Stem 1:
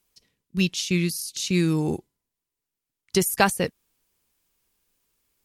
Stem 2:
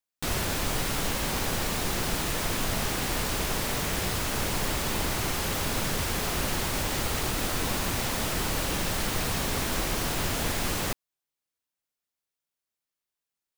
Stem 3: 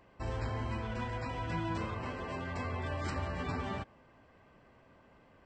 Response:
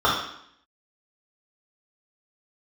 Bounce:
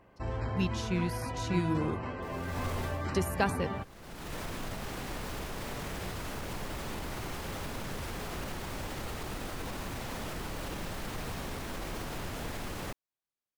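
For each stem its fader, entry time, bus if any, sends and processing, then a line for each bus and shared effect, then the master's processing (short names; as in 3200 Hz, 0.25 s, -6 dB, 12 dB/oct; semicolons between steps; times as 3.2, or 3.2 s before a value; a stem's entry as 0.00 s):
-8.5 dB, 0.00 s, no send, dry
-3.5 dB, 2.00 s, no send, limiter -23.5 dBFS, peak gain reduction 7.5 dB; vibrato 0.95 Hz 20 cents; auto duck -22 dB, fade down 0.30 s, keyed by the first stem
+2.0 dB, 0.00 s, no send, dry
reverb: off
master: high shelf 3000 Hz -8.5 dB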